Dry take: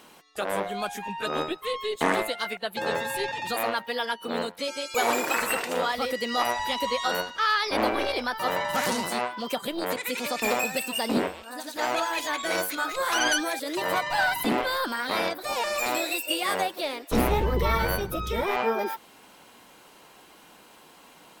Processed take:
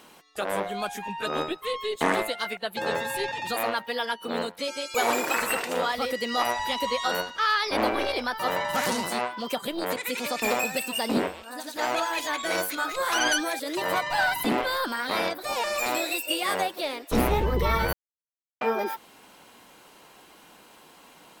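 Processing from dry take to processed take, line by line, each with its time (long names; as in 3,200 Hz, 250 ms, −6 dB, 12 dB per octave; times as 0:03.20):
0:17.93–0:18.61: silence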